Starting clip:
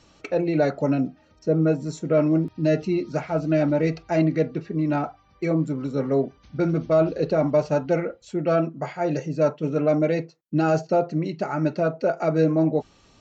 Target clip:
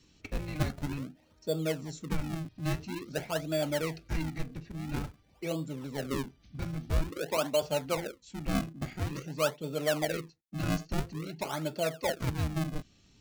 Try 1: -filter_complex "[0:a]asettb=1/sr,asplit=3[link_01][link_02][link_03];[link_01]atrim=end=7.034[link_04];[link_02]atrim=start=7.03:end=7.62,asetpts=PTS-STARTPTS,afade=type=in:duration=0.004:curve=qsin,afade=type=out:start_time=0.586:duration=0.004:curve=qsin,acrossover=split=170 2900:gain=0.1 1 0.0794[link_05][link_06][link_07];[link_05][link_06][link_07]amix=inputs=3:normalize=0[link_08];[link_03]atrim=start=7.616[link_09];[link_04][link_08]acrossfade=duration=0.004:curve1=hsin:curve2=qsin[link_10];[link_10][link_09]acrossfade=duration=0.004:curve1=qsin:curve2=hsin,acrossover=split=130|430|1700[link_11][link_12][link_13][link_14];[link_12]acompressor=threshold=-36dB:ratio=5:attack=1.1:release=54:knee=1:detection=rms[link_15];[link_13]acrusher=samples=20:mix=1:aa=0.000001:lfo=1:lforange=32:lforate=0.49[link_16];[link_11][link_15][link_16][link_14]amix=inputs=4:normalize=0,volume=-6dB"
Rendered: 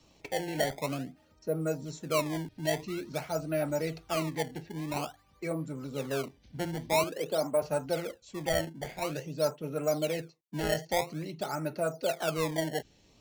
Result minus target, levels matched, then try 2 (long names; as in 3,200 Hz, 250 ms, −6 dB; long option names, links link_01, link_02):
sample-and-hold swept by an LFO: distortion −7 dB
-filter_complex "[0:a]asettb=1/sr,asplit=3[link_01][link_02][link_03];[link_01]atrim=end=7.034[link_04];[link_02]atrim=start=7.03:end=7.62,asetpts=PTS-STARTPTS,afade=type=in:duration=0.004:curve=qsin,afade=type=out:start_time=0.586:duration=0.004:curve=qsin,acrossover=split=170 2900:gain=0.1 1 0.0794[link_05][link_06][link_07];[link_05][link_06][link_07]amix=inputs=3:normalize=0[link_08];[link_03]atrim=start=7.616[link_09];[link_04][link_08]acrossfade=duration=0.004:curve1=hsin:curve2=qsin[link_10];[link_10][link_09]acrossfade=duration=0.004:curve1=qsin:curve2=hsin,acrossover=split=130|430|1700[link_11][link_12][link_13][link_14];[link_12]acompressor=threshold=-36dB:ratio=5:attack=1.1:release=54:knee=1:detection=rms[link_15];[link_13]acrusher=samples=54:mix=1:aa=0.000001:lfo=1:lforange=86.4:lforate=0.49[link_16];[link_11][link_15][link_16][link_14]amix=inputs=4:normalize=0,volume=-6dB"